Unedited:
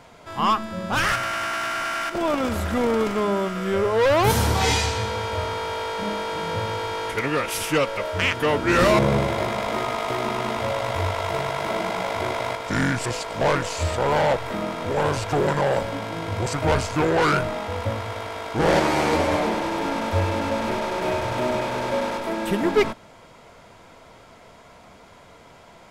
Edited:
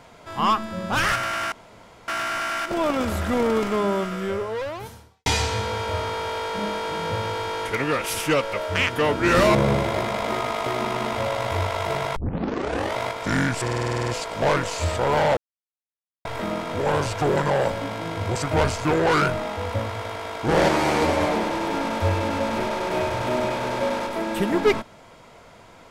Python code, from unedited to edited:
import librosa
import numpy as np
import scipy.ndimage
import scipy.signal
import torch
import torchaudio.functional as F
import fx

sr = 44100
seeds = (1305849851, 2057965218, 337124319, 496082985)

y = fx.edit(x, sr, fx.insert_room_tone(at_s=1.52, length_s=0.56),
    fx.fade_out_span(start_s=3.5, length_s=1.2, curve='qua'),
    fx.tape_start(start_s=11.6, length_s=0.8),
    fx.stutter(start_s=13.07, slice_s=0.05, count=10),
    fx.insert_silence(at_s=14.36, length_s=0.88), tone=tone)